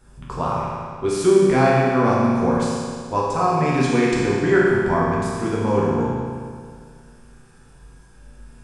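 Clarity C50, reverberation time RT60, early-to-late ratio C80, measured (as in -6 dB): -1.5 dB, 2.0 s, 0.0 dB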